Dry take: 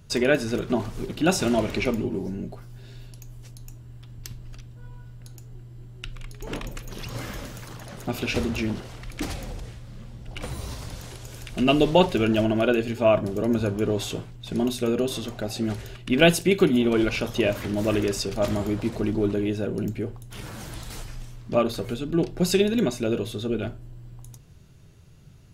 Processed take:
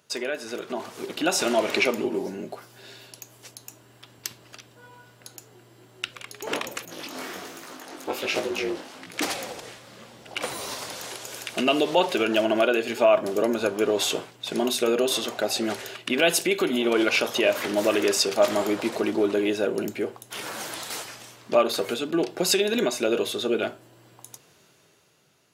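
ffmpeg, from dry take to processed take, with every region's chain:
ffmpeg -i in.wav -filter_complex "[0:a]asettb=1/sr,asplit=3[link_01][link_02][link_03];[link_01]atrim=end=6.854[link_04];[link_02]atrim=start=6.85:end=9.14,asetpts=PTS-STARTPTS,afade=type=in:duration=0.004:curve=qsin,afade=type=out:start_time=2.286:duration=0.004:curve=qsin,equalizer=frequency=180:width=2:gain=7,aeval=exprs='val(0)*sin(2*PI*140*n/s)':channel_layout=same,flanger=delay=17.5:depth=5.4:speed=1.3[link_05];[link_03]atrim=start=9.136[link_06];[link_04][link_05]acrossfade=duration=0.004:curve1=hsin:curve2=qsin[link_07];[link_07][link_06]acrossfade=duration=0.004:curve1=qsin:curve2=hsin,alimiter=limit=-16dB:level=0:latency=1:release=148,highpass=440,dynaudnorm=framelen=190:gausssize=11:maxgain=9dB,volume=-1dB" out.wav

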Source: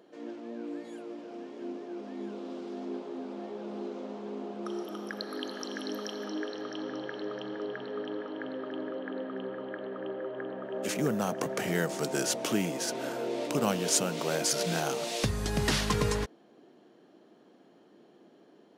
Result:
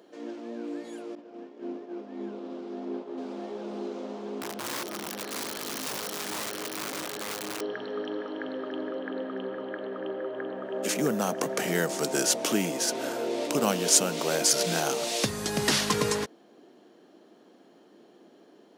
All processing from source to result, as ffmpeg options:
ffmpeg -i in.wav -filter_complex "[0:a]asettb=1/sr,asplit=3[link_01][link_02][link_03];[link_01]atrim=end=1.154[link_04];[link_02]atrim=start=1.15:end=3.18,asetpts=PTS-STARTPTS,afade=type=in:duration=0.004:curve=qsin,afade=type=out:start_time=2.026:duration=0.004:curve=qsin,lowpass=frequency=2200:poles=1,agate=range=-33dB:threshold=-39dB:ratio=3:release=100:detection=peak[link_05];[link_03]atrim=start=3.176[link_06];[link_04][link_05]acrossfade=duration=0.004:curve1=hsin:curve2=qsin[link_07];[link_07][link_06]acrossfade=duration=0.004:curve1=qsin:curve2=hsin,asettb=1/sr,asplit=3[link_08][link_09][link_10];[link_08]atrim=end=4.414[link_11];[link_09]atrim=start=4.41:end=7.61,asetpts=PTS-STARTPTS,afade=type=in:duration=0.004:curve=qsin,afade=type=out:start_time=3.196:duration=0.004:curve=qsin,bandreject=frequency=153:width_type=h:width=4,bandreject=frequency=306:width_type=h:width=4,bandreject=frequency=459:width_type=h:width=4,bandreject=frequency=612:width_type=h:width=4,bandreject=frequency=765:width_type=h:width=4,bandreject=frequency=918:width_type=h:width=4,aeval=exprs='val(0)+0.00112*(sin(2*PI*60*n/s)+sin(2*PI*2*60*n/s)/2+sin(2*PI*3*60*n/s)/3+sin(2*PI*4*60*n/s)/4+sin(2*PI*5*60*n/s)/5)':channel_layout=same,aeval=exprs='(mod(44.7*val(0)+1,2)-1)/44.7':channel_layout=same[link_12];[link_10]atrim=start=7.606[link_13];[link_11][link_12]acrossfade=duration=0.004:curve1=hsin:curve2=qsin[link_14];[link_14][link_13]acrossfade=duration=0.004:curve1=qsin:curve2=hsin,highpass=190,bass=frequency=250:gain=1,treble=frequency=4000:gain=4,volume=3dB" out.wav

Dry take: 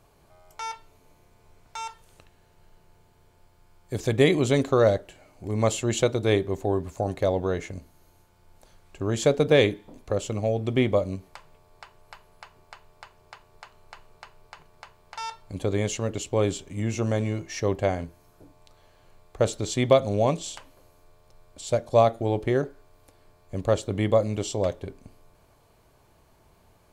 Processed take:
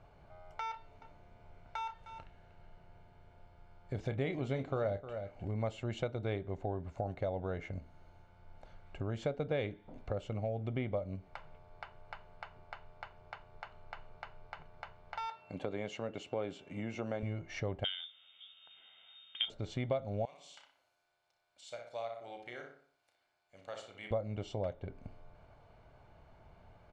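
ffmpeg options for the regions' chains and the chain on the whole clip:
ffmpeg -i in.wav -filter_complex "[0:a]asettb=1/sr,asplit=3[link_01][link_02][link_03];[link_01]atrim=end=0.714[link_04];[link_02]atrim=start=0.71:end=5.54,asetpts=PTS-STARTPTS,afade=type=in:duration=0.004:curve=qsin,afade=type=out:start_time=4.826:duration=0.004:curve=qsin,asplit=2[link_05][link_06];[link_06]adelay=30,volume=-11dB[link_07];[link_05][link_07]amix=inputs=2:normalize=0,atrim=end_sample=213003,aecho=1:1:308:0.158,atrim=end_sample=213003[link_08];[link_03]atrim=start=5.536[link_09];[link_04][link_08]acrossfade=duration=0.004:curve1=hsin:curve2=qsin[link_10];[link_10][link_09]acrossfade=duration=0.004:curve1=qsin:curve2=hsin,asettb=1/sr,asplit=3[link_11][link_12][link_13];[link_11]atrim=end=15.284[link_14];[link_12]atrim=start=15.28:end=17.23,asetpts=PTS-STARTPTS,afade=type=in:duration=0.004:curve=qsin,afade=type=out:start_time=1.946:duration=0.004:curve=qsin,highpass=210,aeval=exprs='val(0)+0.00112*sin(2*PI*2700*n/s)':channel_layout=same[link_15];[link_13]atrim=start=17.226[link_16];[link_14][link_15]acrossfade=duration=0.004:curve1=hsin:curve2=qsin[link_17];[link_17][link_16]acrossfade=duration=0.004:curve1=qsin:curve2=hsin,asettb=1/sr,asplit=3[link_18][link_19][link_20];[link_18]atrim=end=17.844[link_21];[link_19]atrim=start=17.84:end=19.5,asetpts=PTS-STARTPTS,afade=type=in:duration=0.004:curve=qsin,afade=type=out:start_time=1.656:duration=0.004:curve=qsin,equalizer=frequency=470:width_type=o:width=0.3:gain=14,lowpass=frequency=3100:width_type=q:width=0.5098,lowpass=frequency=3100:width_type=q:width=0.6013,lowpass=frequency=3100:width_type=q:width=0.9,lowpass=frequency=3100:width_type=q:width=2.563,afreqshift=-3700[link_22];[link_20]atrim=start=19.496[link_23];[link_21][link_22]acrossfade=duration=0.004:curve1=hsin:curve2=qsin[link_24];[link_24][link_23]acrossfade=duration=0.004:curve1=qsin:curve2=hsin,asettb=1/sr,asplit=3[link_25][link_26][link_27];[link_25]atrim=end=20.254[link_28];[link_26]atrim=start=20.25:end=24.11,asetpts=PTS-STARTPTS,afade=type=in:duration=0.004:curve=qsin,afade=type=out:start_time=3.856:duration=0.004:curve=qsin,aderivative,asplit=2[link_29][link_30];[link_30]adelay=33,volume=-8dB[link_31];[link_29][link_31]amix=inputs=2:normalize=0,atrim=end_sample=170226,asplit=2[link_32][link_33];[link_33]adelay=61,lowpass=frequency=3000:poles=1,volume=-5dB,asplit=2[link_34][link_35];[link_35]adelay=61,lowpass=frequency=3000:poles=1,volume=0.46,asplit=2[link_36][link_37];[link_37]adelay=61,lowpass=frequency=3000:poles=1,volume=0.46,asplit=2[link_38][link_39];[link_39]adelay=61,lowpass=frequency=3000:poles=1,volume=0.46,asplit=2[link_40][link_41];[link_41]adelay=61,lowpass=frequency=3000:poles=1,volume=0.46,asplit=2[link_42][link_43];[link_43]adelay=61,lowpass=frequency=3000:poles=1,volume=0.46[link_44];[link_32][link_34][link_36][link_38][link_40][link_42][link_44]amix=inputs=7:normalize=0,atrim=end_sample=170226[link_45];[link_27]atrim=start=24.106[link_46];[link_28][link_45]acrossfade=duration=0.004:curve1=hsin:curve2=qsin[link_47];[link_47][link_46]acrossfade=duration=0.004:curve1=qsin:curve2=hsin,lowpass=2600,aecho=1:1:1.4:0.37,acompressor=threshold=-38dB:ratio=2.5,volume=-1dB" out.wav

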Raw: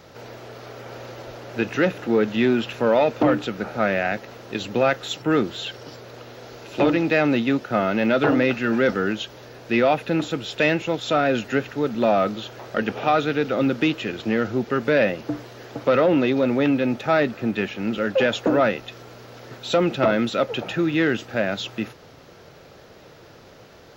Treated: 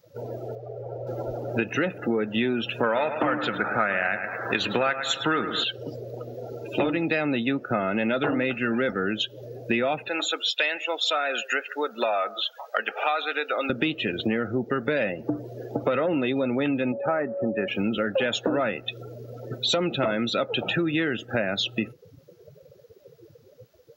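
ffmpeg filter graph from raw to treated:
ffmpeg -i in.wav -filter_complex "[0:a]asettb=1/sr,asplit=3[link_01][link_02][link_03];[link_01]atrim=end=0.554[link_04];[link_02]atrim=start=0.55:end=1.07,asetpts=PTS-STARTPTS,afade=type=in:duration=0.004:curve=qsin,afade=type=out:start_time=0.516:duration=0.004:curve=qsin,lowpass=frequency=1000:poles=1,equalizer=frequency=220:width_type=o:width=0.77:gain=-11.5[link_05];[link_03]atrim=start=1.066[link_06];[link_04][link_05]acrossfade=duration=0.004:curve1=hsin:curve2=qsin[link_07];[link_07][link_06]acrossfade=duration=0.004:curve1=qsin:curve2=hsin,asettb=1/sr,asplit=3[link_08][link_09][link_10];[link_08]atrim=end=2.834[link_11];[link_09]atrim=start=2.83:end=5.64,asetpts=PTS-STARTPTS,afade=type=in:duration=0.004:curve=qsin,afade=type=out:start_time=2.806:duration=0.004:curve=qsin,equalizer=frequency=1400:width=0.76:gain=11,aecho=1:1:107|214|321|428:0.282|0.118|0.0497|0.0209,atrim=end_sample=123921[link_12];[link_10]atrim=start=5.636[link_13];[link_11][link_12]acrossfade=duration=0.004:curve1=hsin:curve2=qsin[link_14];[link_14][link_13]acrossfade=duration=0.004:curve1=qsin:curve2=hsin,asettb=1/sr,asplit=3[link_15][link_16][link_17];[link_15]atrim=end=10.084[link_18];[link_16]atrim=start=10.08:end=13.7,asetpts=PTS-STARTPTS,afade=type=in:duration=0.004:curve=qsin,afade=type=out:start_time=3.616:duration=0.004:curve=qsin,highpass=720,aecho=1:1:142:0.0944,atrim=end_sample=159642[link_19];[link_17]atrim=start=13.696[link_20];[link_18][link_19]acrossfade=duration=0.004:curve1=hsin:curve2=qsin[link_21];[link_21][link_20]acrossfade=duration=0.004:curve1=qsin:curve2=hsin,asettb=1/sr,asplit=3[link_22][link_23][link_24];[link_22]atrim=end=16.924[link_25];[link_23]atrim=start=16.92:end=17.68,asetpts=PTS-STARTPTS,afade=type=in:duration=0.004:curve=qsin,afade=type=out:start_time=0.756:duration=0.004:curve=qsin,lowpass=1500,lowshelf=frequency=230:gain=-9.5,aeval=exprs='val(0)+0.0316*sin(2*PI*560*n/s)':channel_layout=same[link_26];[link_24]atrim=start=17.676[link_27];[link_25][link_26]acrossfade=duration=0.004:curve1=hsin:curve2=qsin[link_28];[link_28][link_27]acrossfade=duration=0.004:curve1=qsin:curve2=hsin,afftdn=noise_reduction=31:noise_floor=-34,aemphasis=mode=production:type=75fm,acompressor=threshold=-32dB:ratio=6,volume=9dB" out.wav

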